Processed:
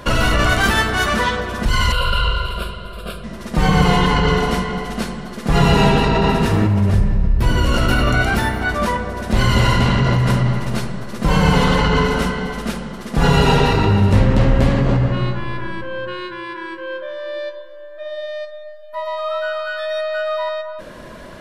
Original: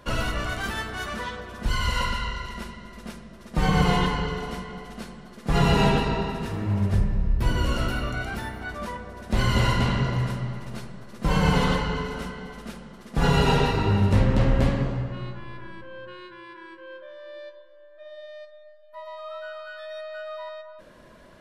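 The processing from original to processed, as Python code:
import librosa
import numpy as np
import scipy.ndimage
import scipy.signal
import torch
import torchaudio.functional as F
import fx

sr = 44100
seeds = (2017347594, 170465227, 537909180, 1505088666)

p1 = fx.over_compress(x, sr, threshold_db=-28.0, ratio=-0.5)
p2 = x + (p1 * librosa.db_to_amplitude(-1.0))
p3 = fx.fixed_phaser(p2, sr, hz=1300.0, stages=8, at=(1.92, 3.24))
y = p3 * librosa.db_to_amplitude(6.0)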